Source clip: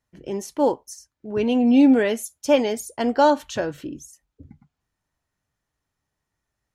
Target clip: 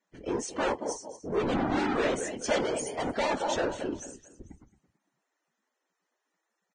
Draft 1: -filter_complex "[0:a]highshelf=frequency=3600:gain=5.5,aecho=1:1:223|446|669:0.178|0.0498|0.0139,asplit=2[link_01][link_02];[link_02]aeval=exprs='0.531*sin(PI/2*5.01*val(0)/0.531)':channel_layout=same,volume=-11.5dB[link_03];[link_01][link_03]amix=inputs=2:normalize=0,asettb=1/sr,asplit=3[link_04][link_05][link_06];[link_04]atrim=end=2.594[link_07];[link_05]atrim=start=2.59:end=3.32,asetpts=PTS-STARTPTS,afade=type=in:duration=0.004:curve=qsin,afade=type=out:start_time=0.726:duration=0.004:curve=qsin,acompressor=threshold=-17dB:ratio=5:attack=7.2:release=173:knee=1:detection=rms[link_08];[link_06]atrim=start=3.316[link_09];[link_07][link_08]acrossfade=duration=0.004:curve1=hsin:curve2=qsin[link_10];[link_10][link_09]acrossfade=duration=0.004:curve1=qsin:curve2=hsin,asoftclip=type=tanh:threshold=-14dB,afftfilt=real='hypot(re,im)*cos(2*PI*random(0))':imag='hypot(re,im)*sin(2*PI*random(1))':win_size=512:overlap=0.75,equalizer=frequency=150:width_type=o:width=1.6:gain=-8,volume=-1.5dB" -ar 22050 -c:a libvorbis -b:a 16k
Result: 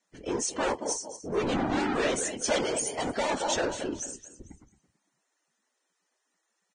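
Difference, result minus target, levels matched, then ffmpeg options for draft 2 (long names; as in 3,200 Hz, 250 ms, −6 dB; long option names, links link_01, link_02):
8,000 Hz band +6.5 dB
-filter_complex "[0:a]highshelf=frequency=3600:gain=-5.5,aecho=1:1:223|446|669:0.178|0.0498|0.0139,asplit=2[link_01][link_02];[link_02]aeval=exprs='0.531*sin(PI/2*5.01*val(0)/0.531)':channel_layout=same,volume=-11.5dB[link_03];[link_01][link_03]amix=inputs=2:normalize=0,asettb=1/sr,asplit=3[link_04][link_05][link_06];[link_04]atrim=end=2.594[link_07];[link_05]atrim=start=2.59:end=3.32,asetpts=PTS-STARTPTS,afade=type=in:duration=0.004:curve=qsin,afade=type=out:start_time=0.726:duration=0.004:curve=qsin,acompressor=threshold=-17dB:ratio=5:attack=7.2:release=173:knee=1:detection=rms[link_08];[link_06]atrim=start=3.316[link_09];[link_07][link_08]acrossfade=duration=0.004:curve1=hsin:curve2=qsin[link_10];[link_10][link_09]acrossfade=duration=0.004:curve1=qsin:curve2=hsin,asoftclip=type=tanh:threshold=-14dB,afftfilt=real='hypot(re,im)*cos(2*PI*random(0))':imag='hypot(re,im)*sin(2*PI*random(1))':win_size=512:overlap=0.75,equalizer=frequency=150:width_type=o:width=1.6:gain=-8,volume=-1.5dB" -ar 22050 -c:a libvorbis -b:a 16k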